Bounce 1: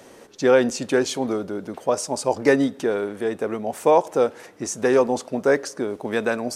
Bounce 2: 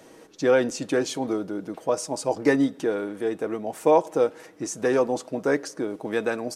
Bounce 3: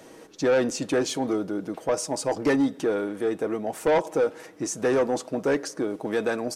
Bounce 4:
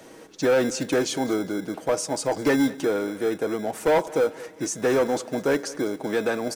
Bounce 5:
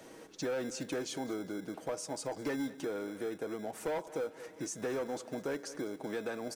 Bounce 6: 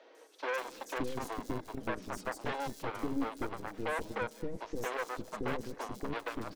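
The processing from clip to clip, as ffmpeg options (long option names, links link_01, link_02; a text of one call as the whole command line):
ffmpeg -i in.wav -af "equalizer=frequency=290:width=1.9:gain=4,aecho=1:1:6.3:0.37,volume=-4.5dB" out.wav
ffmpeg -i in.wav -af "asoftclip=type=tanh:threshold=-18dB,volume=2dB" out.wav
ffmpeg -i in.wav -filter_complex "[0:a]acrossover=split=310[link_01][link_02];[link_01]acrusher=samples=24:mix=1:aa=0.000001[link_03];[link_03][link_02]amix=inputs=2:normalize=0,aecho=1:1:203|406|609:0.1|0.042|0.0176,volume=1.5dB" out.wav
ffmpeg -i in.wav -af "acompressor=threshold=-34dB:ratio=2,volume=-6dB" out.wav
ffmpeg -i in.wav -filter_complex "[0:a]equalizer=frequency=125:width_type=o:width=1:gain=-9,equalizer=frequency=250:width_type=o:width=1:gain=8,equalizer=frequency=500:width_type=o:width=1:gain=5,equalizer=frequency=4000:width_type=o:width=1:gain=4,aeval=exprs='0.112*(cos(1*acos(clip(val(0)/0.112,-1,1)))-cos(1*PI/2))+0.0282*(cos(4*acos(clip(val(0)/0.112,-1,1)))-cos(4*PI/2))+0.0316*(cos(7*acos(clip(val(0)/0.112,-1,1)))-cos(7*PI/2))':channel_layout=same,acrossover=split=430|4500[link_01][link_02][link_03];[link_03]adelay=150[link_04];[link_01]adelay=570[link_05];[link_05][link_02][link_04]amix=inputs=3:normalize=0,volume=-5dB" out.wav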